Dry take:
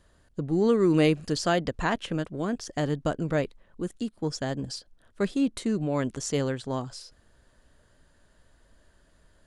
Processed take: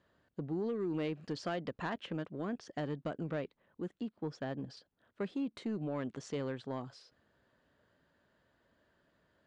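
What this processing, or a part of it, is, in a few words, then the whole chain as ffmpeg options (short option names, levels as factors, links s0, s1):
AM radio: -filter_complex "[0:a]asettb=1/sr,asplit=3[s0][s1][s2];[s0]atrim=end=3.874[s3];[s1]atrim=start=3.87:end=4.77,asetpts=PTS-STARTPTS,afade=t=in:d=0.004:c=qsin,afade=t=out:st=0.896:d=0.004:c=qsin,highshelf=f=6000:g=-10[s4];[s2]atrim=start=4.766[s5];[s3][s4]acrossfade=d=0.004:c1=hsin:c2=qsin[s6];[s6][s5]acrossfade=d=0.004:c1=qsin:c2=hsin,highpass=130,lowpass=3400,acompressor=threshold=0.0562:ratio=4,asoftclip=type=tanh:threshold=0.0891,volume=0.473"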